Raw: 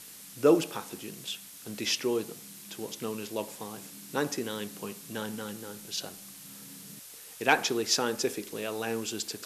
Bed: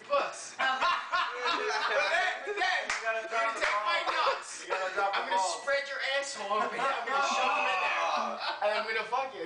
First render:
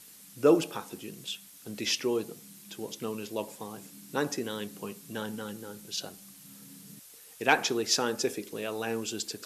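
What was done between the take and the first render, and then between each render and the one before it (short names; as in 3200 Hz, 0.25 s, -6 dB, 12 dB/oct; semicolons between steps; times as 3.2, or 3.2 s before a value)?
denoiser 6 dB, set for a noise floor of -48 dBFS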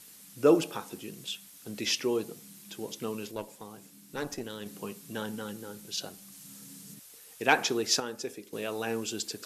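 3.31–4.66 tube stage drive 20 dB, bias 0.8; 6.32–6.94 bell 7200 Hz +4.5 dB 1.2 oct; 8–8.53 gain -7.5 dB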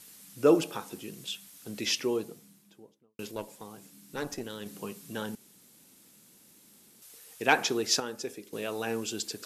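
1.93–3.19 studio fade out; 5.35–7.02 room tone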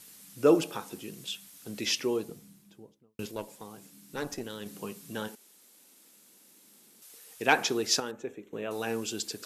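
2.29–3.26 low shelf 140 Hz +12 dB; 5.27–7.36 HPF 470 Hz -> 150 Hz; 8.11–8.71 running mean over 9 samples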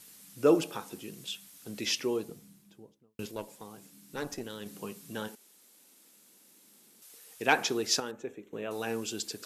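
gain -1.5 dB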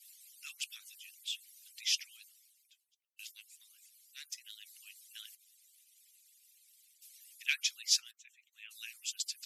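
median-filter separation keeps percussive; steep high-pass 2200 Hz 36 dB/oct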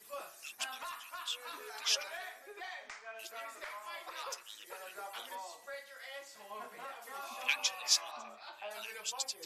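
add bed -16.5 dB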